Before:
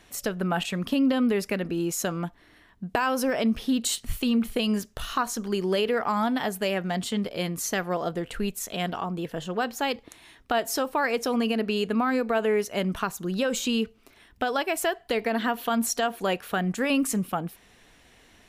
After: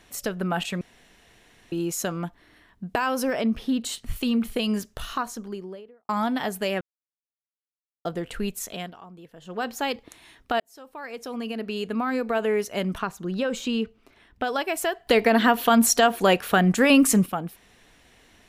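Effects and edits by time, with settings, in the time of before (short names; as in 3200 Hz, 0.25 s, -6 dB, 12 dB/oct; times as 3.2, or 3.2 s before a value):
0.81–1.72 room tone
3.41–4.16 high shelf 3600 Hz -7 dB
4.91–6.09 studio fade out
6.81–8.05 mute
8.66–9.68 dip -14.5 dB, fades 0.28 s
10.6–12.38 fade in
12.98–14.44 LPF 3200 Hz 6 dB/oct
15.07–17.26 gain +7.5 dB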